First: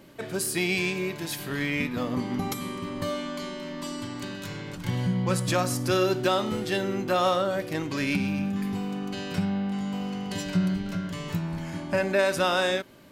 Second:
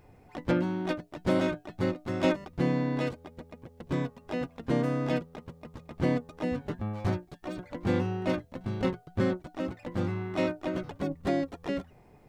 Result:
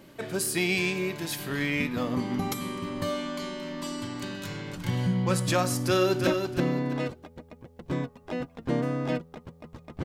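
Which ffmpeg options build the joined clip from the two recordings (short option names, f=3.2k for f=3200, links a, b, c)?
-filter_complex "[0:a]apad=whole_dur=10.04,atrim=end=10.04,atrim=end=6.272[a];[1:a]atrim=start=2.278:end=6.05[b];[a][b]acrossfade=d=0.004:c1=hsin:c2=hsin,asplit=2[c][d];[d]afade=t=in:st=5.86:d=0.01,afade=t=out:st=6.27:d=0.01,aecho=0:1:330|660|990:0.530884|0.132721|0.0331803[e];[c][e]amix=inputs=2:normalize=0"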